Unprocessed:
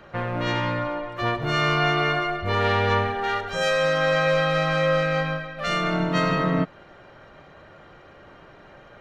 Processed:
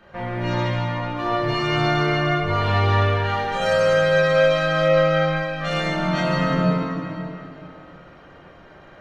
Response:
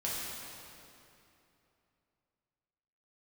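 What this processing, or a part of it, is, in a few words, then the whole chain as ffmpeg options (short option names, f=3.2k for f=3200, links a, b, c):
stairwell: -filter_complex "[1:a]atrim=start_sample=2205[a];[0:a][a]afir=irnorm=-1:irlink=0,asplit=3[b][c][d];[b]afade=t=out:st=4.88:d=0.02[e];[c]lowpass=f=7.1k:w=0.5412,lowpass=f=7.1k:w=1.3066,afade=t=in:st=4.88:d=0.02,afade=t=out:st=5.35:d=0.02[f];[d]afade=t=in:st=5.35:d=0.02[g];[e][f][g]amix=inputs=3:normalize=0,volume=-3.5dB"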